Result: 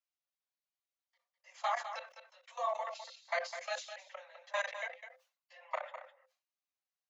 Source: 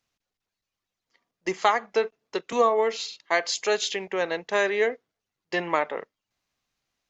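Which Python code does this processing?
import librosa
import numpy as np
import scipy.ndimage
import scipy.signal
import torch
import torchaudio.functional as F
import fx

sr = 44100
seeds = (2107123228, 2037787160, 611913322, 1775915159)

p1 = fx.phase_scramble(x, sr, seeds[0], window_ms=50)
p2 = fx.level_steps(p1, sr, step_db=23)
p3 = scipy.signal.sosfilt(scipy.signal.cheby1(10, 1.0, 520.0, 'highpass', fs=sr, output='sos'), p2)
p4 = p3 + fx.echo_single(p3, sr, ms=205, db=-10.0, dry=0)
p5 = fx.sustainer(p4, sr, db_per_s=150.0)
y = p5 * 10.0 ** (-8.0 / 20.0)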